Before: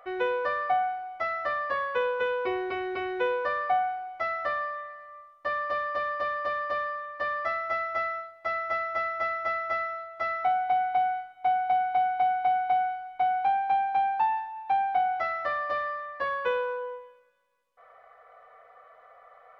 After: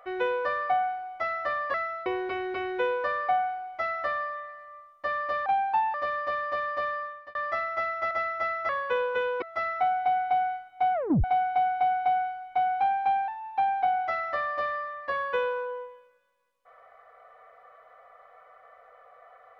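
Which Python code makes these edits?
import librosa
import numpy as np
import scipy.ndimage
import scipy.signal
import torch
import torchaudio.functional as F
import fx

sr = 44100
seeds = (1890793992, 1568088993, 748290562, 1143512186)

y = fx.edit(x, sr, fx.swap(start_s=1.74, length_s=0.73, other_s=9.74, other_length_s=0.32),
    fx.fade_out_span(start_s=6.98, length_s=0.3),
    fx.cut(start_s=8.04, length_s=1.12),
    fx.tape_stop(start_s=11.58, length_s=0.3),
    fx.move(start_s=13.92, length_s=0.48, to_s=5.87), tone=tone)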